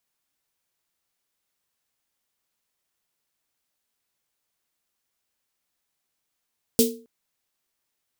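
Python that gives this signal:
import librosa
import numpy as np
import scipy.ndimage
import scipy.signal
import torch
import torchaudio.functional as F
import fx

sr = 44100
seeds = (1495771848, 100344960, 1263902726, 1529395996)

y = fx.drum_snare(sr, seeds[0], length_s=0.27, hz=240.0, second_hz=450.0, noise_db=-1.5, noise_from_hz=3300.0, decay_s=0.39, noise_decay_s=0.25)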